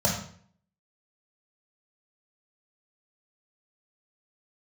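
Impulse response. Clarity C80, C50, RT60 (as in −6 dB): 8.5 dB, 5.0 dB, 0.55 s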